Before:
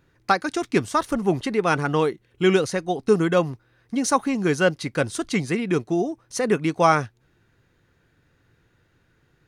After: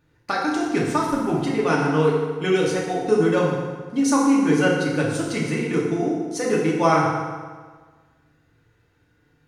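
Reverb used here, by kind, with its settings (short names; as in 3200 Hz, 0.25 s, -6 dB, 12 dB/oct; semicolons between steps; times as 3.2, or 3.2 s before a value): FDN reverb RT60 1.5 s, low-frequency decay 1×, high-frequency decay 0.75×, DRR -4.5 dB; gain -5.5 dB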